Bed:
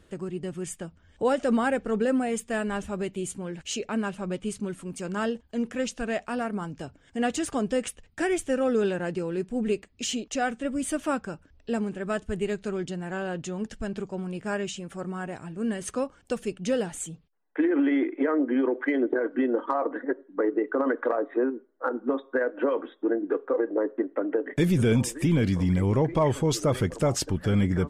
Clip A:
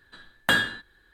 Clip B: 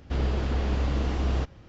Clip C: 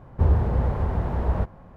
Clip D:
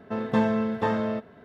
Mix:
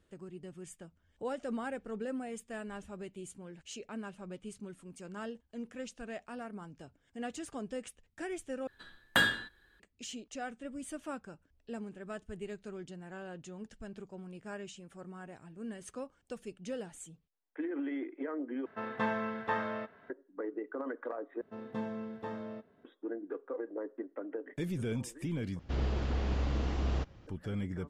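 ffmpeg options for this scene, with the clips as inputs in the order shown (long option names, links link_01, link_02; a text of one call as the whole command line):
ffmpeg -i bed.wav -i cue0.wav -i cue1.wav -i cue2.wav -i cue3.wav -filter_complex "[4:a]asplit=2[link_01][link_02];[0:a]volume=-13.5dB[link_03];[link_01]equalizer=frequency=1600:width=0.5:gain=13.5[link_04];[link_02]equalizer=frequency=330:width_type=o:width=1.3:gain=3.5[link_05];[link_03]asplit=5[link_06][link_07][link_08][link_09][link_10];[link_06]atrim=end=8.674[link_11];[1:a]atrim=end=1.13,asetpts=PTS-STARTPTS,volume=-5dB[link_12];[link_07]atrim=start=9.796:end=18.664[link_13];[link_04]atrim=end=1.44,asetpts=PTS-STARTPTS,volume=-15dB[link_14];[link_08]atrim=start=20.096:end=21.414[link_15];[link_05]atrim=end=1.44,asetpts=PTS-STARTPTS,volume=-17dB[link_16];[link_09]atrim=start=22.846:end=25.594[link_17];[2:a]atrim=end=1.68,asetpts=PTS-STARTPTS,volume=-6dB[link_18];[link_10]atrim=start=27.266[link_19];[link_11][link_12]acrossfade=duration=0.004:curve1=hsin:curve2=hsin[link_20];[link_20][link_13]acrossfade=duration=0.004:curve1=hsin:curve2=hsin[link_21];[link_21][link_14]acrossfade=duration=0.004:curve1=hsin:curve2=hsin[link_22];[link_22][link_15]acrossfade=duration=0.004:curve1=hsin:curve2=hsin[link_23];[link_23][link_16]acrossfade=duration=0.004:curve1=hsin:curve2=hsin[link_24];[link_24][link_17]acrossfade=duration=0.004:curve1=hsin:curve2=hsin[link_25];[link_25][link_18]acrossfade=duration=0.004:curve1=hsin:curve2=hsin[link_26];[link_26][link_19]acrossfade=duration=0.004:curve1=hsin:curve2=hsin" out.wav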